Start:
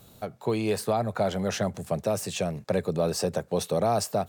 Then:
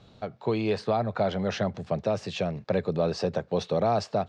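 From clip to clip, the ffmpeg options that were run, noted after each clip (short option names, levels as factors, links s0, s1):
-af "lowpass=f=4800:w=0.5412,lowpass=f=4800:w=1.3066"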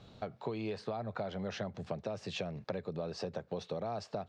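-af "acompressor=threshold=0.02:ratio=6,volume=0.841"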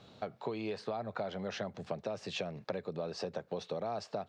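-af "highpass=f=200:p=1,volume=1.19"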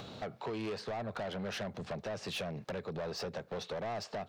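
-af "acompressor=mode=upward:threshold=0.00562:ratio=2.5,asoftclip=type=tanh:threshold=0.0112,volume=1.78"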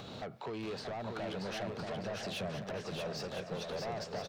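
-filter_complex "[0:a]alimiter=level_in=7.5:limit=0.0631:level=0:latency=1:release=295,volume=0.133,asplit=2[s0][s1];[s1]aecho=0:1:630|1008|1235|1371|1453:0.631|0.398|0.251|0.158|0.1[s2];[s0][s2]amix=inputs=2:normalize=0,volume=1.78"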